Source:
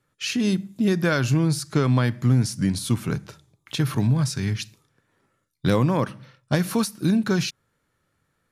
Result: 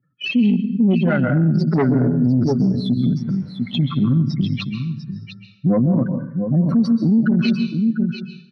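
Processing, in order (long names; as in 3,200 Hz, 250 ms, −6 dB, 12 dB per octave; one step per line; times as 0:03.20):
expanding power law on the bin magnitudes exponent 3.2
0:01.54–0:02.47: parametric band 400 Hz +13.5 dB 1.2 octaves
0:03.16–0:04.01: background noise brown −51 dBFS
0:05.79–0:06.57: phaser swept by the level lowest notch 530 Hz, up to 2,200 Hz, full sweep at −23 dBFS
single-tap delay 698 ms −9.5 dB
dense smooth reverb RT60 0.77 s, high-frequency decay 0.8×, pre-delay 120 ms, DRR 7 dB
tube saturation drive 15 dB, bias 0.65
loudspeaker in its box 160–4,100 Hz, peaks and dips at 170 Hz +5 dB, 240 Hz +10 dB, 440 Hz −3 dB, 710 Hz +3 dB, 2,000 Hz +8 dB, 2,900 Hz −4 dB
boost into a limiter +17.5 dB
level −8.5 dB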